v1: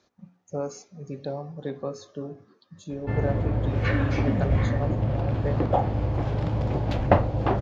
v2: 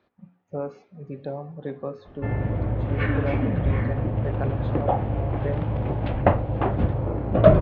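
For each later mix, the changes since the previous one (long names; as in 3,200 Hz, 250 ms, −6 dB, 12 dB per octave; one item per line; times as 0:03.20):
background: entry −0.85 s
master: add low-pass filter 3,100 Hz 24 dB per octave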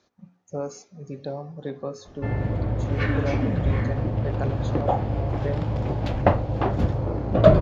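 master: remove low-pass filter 3,100 Hz 24 dB per octave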